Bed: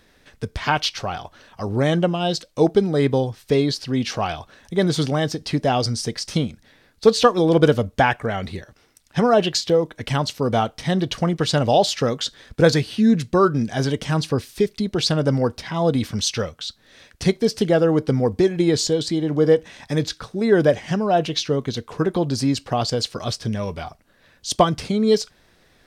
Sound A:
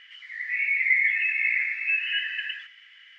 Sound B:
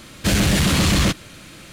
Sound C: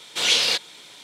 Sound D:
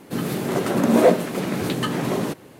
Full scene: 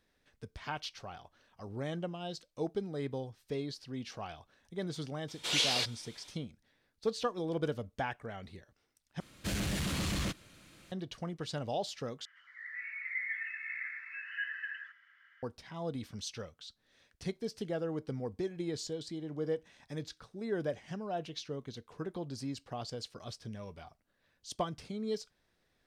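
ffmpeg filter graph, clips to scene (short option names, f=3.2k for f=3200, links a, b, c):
-filter_complex "[0:a]volume=-19dB[a];[1:a]highshelf=f=1.9k:t=q:w=3:g=-10[b];[a]asplit=3[c][d][e];[c]atrim=end=9.204[f];[2:a]atrim=end=1.72,asetpts=PTS-STARTPTS,volume=-17dB[g];[d]atrim=start=10.916:end=12.254[h];[b]atrim=end=3.18,asetpts=PTS-STARTPTS,volume=-6.5dB[i];[e]atrim=start=15.426[j];[3:a]atrim=end=1.03,asetpts=PTS-STARTPTS,volume=-10.5dB,afade=t=in:d=0.004:c=hsin,afade=t=out:st=1.026:d=0.004:c=hsin,adelay=5280[k];[f][g]acrossfade=d=0.004:c1=hsin:c2=hsin[l];[l][h]acrossfade=d=0.004:c1=hsin:c2=hsin[m];[m][i]acrossfade=d=0.004:c1=hsin:c2=hsin[n];[n][j]acrossfade=d=0.004:c1=hsin:c2=hsin[o];[o][k]amix=inputs=2:normalize=0"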